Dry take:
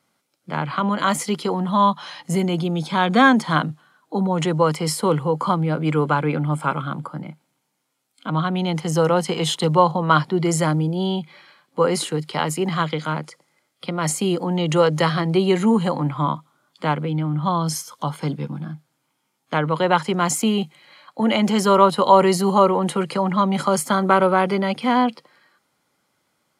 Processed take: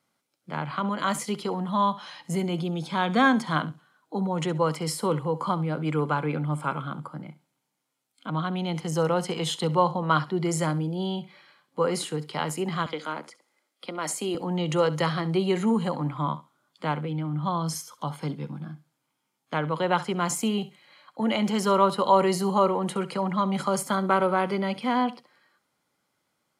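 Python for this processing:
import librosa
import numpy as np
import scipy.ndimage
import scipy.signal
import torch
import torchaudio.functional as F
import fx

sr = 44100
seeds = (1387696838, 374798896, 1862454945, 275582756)

y = fx.highpass(x, sr, hz=230.0, slope=24, at=(12.86, 14.35))
y = fx.echo_feedback(y, sr, ms=67, feedback_pct=16, wet_db=-17)
y = F.gain(torch.from_numpy(y), -6.5).numpy()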